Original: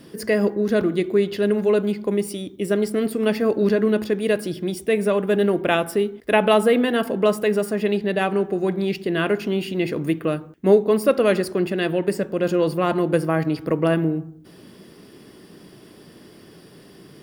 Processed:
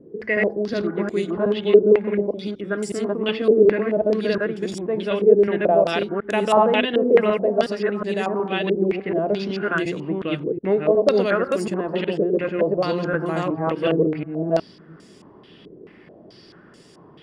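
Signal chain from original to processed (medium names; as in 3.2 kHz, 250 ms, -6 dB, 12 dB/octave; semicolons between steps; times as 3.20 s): chunks repeated in reverse 365 ms, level 0 dB; step-sequenced low-pass 4.6 Hz 440–7200 Hz; trim -6 dB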